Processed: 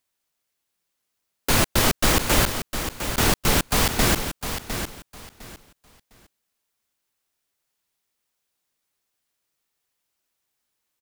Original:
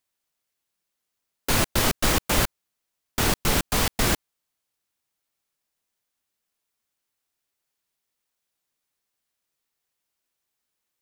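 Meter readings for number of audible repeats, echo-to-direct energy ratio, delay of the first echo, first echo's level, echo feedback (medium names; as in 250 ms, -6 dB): 2, -9.0 dB, 706 ms, -9.0 dB, 22%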